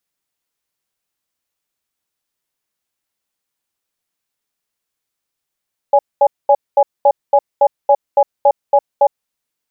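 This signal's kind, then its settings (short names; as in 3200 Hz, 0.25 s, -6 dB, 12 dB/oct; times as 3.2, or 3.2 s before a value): cadence 570 Hz, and 829 Hz, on 0.06 s, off 0.22 s, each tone -9 dBFS 3.25 s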